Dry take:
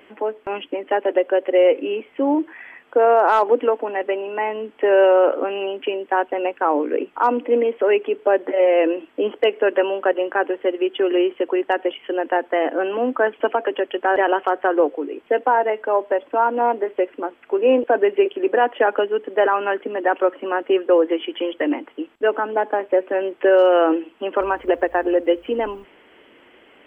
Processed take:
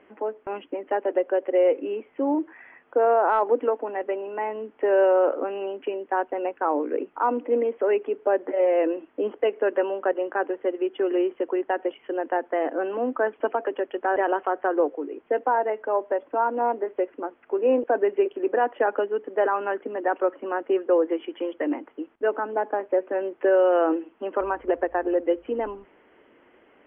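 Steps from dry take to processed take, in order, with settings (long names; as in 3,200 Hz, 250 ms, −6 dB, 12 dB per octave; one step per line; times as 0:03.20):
low-pass filter 1,800 Hz 12 dB per octave
level −5 dB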